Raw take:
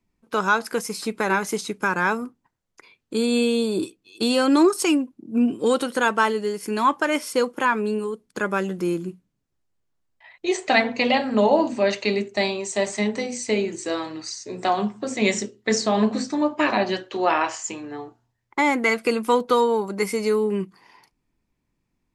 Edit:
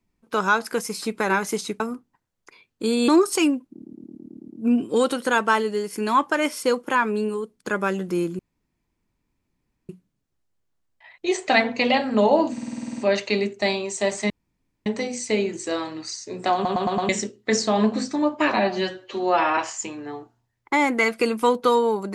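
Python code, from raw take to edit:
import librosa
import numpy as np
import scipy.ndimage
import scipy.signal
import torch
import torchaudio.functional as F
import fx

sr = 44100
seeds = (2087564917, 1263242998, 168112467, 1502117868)

y = fx.edit(x, sr, fx.cut(start_s=1.8, length_s=0.31),
    fx.cut(start_s=3.39, length_s=1.16),
    fx.stutter(start_s=5.18, slice_s=0.11, count=8),
    fx.insert_room_tone(at_s=9.09, length_s=1.5),
    fx.stutter(start_s=11.73, slice_s=0.05, count=10),
    fx.insert_room_tone(at_s=13.05, length_s=0.56),
    fx.stutter_over(start_s=14.73, slice_s=0.11, count=5),
    fx.stretch_span(start_s=16.76, length_s=0.67, factor=1.5), tone=tone)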